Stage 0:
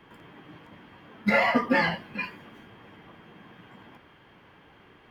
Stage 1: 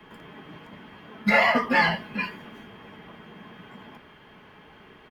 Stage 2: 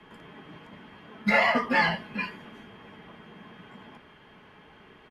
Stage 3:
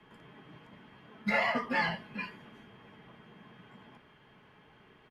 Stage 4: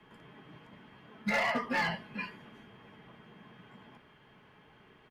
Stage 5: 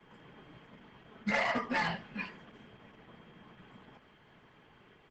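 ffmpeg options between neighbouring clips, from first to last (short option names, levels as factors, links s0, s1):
-filter_complex "[0:a]acrossover=split=110|570|1400[s0][s1][s2][s3];[s1]alimiter=limit=0.0631:level=0:latency=1:release=327[s4];[s0][s4][s2][s3]amix=inputs=4:normalize=0,aecho=1:1:4.7:0.35,volume=1.58"
-af "lowpass=f=12000:w=0.5412,lowpass=f=12000:w=1.3066,volume=0.75"
-af "equalizer=f=130:w=5.1:g=7.5,volume=0.447"
-af "asoftclip=type=hard:threshold=0.0596"
-filter_complex "[0:a]acrossover=split=290|860|4600[s0][s1][s2][s3];[s3]acrusher=bits=6:mode=log:mix=0:aa=0.000001[s4];[s0][s1][s2][s4]amix=inputs=4:normalize=0" -ar 48000 -c:a libopus -b:a 12k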